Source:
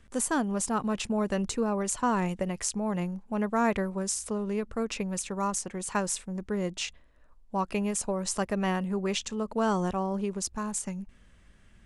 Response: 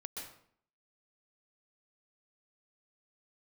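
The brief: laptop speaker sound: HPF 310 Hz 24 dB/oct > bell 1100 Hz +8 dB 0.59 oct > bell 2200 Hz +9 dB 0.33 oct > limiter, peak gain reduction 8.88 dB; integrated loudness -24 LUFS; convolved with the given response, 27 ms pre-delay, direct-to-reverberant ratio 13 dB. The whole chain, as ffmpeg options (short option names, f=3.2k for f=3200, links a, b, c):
-filter_complex "[0:a]asplit=2[a][b];[1:a]atrim=start_sample=2205,adelay=27[c];[b][c]afir=irnorm=-1:irlink=0,volume=-11dB[d];[a][d]amix=inputs=2:normalize=0,highpass=f=310:w=0.5412,highpass=f=310:w=1.3066,equalizer=f=1.1k:t=o:w=0.59:g=8,equalizer=f=2.2k:t=o:w=0.33:g=9,volume=8dB,alimiter=limit=-11.5dB:level=0:latency=1"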